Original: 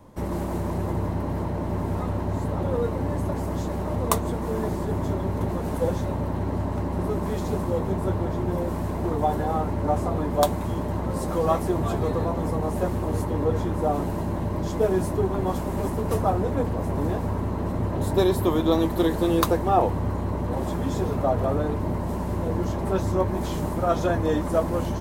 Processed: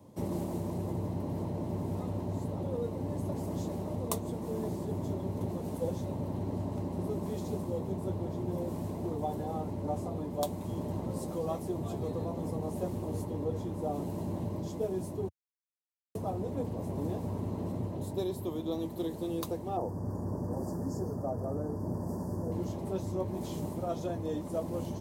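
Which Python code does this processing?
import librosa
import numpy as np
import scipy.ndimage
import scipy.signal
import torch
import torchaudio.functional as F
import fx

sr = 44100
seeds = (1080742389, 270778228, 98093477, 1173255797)

y = fx.cheby1_bandstop(x, sr, low_hz=1800.0, high_hz=4600.0, order=5, at=(19.77, 22.52))
y = fx.edit(y, sr, fx.silence(start_s=15.29, length_s=0.86), tone=tone)
y = scipy.signal.sosfilt(scipy.signal.butter(4, 89.0, 'highpass', fs=sr, output='sos'), y)
y = fx.peak_eq(y, sr, hz=1500.0, db=-12.5, octaves=1.3)
y = fx.rider(y, sr, range_db=10, speed_s=0.5)
y = F.gain(torch.from_numpy(y), -8.0).numpy()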